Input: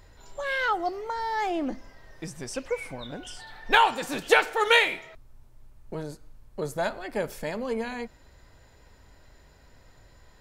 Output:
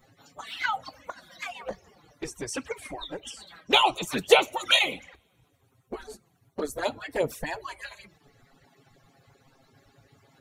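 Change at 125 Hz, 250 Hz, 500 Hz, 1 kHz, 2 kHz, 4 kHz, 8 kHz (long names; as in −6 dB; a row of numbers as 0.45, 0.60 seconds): −3.0, −3.0, 0.0, −3.0, −3.5, +4.5, +3.0 decibels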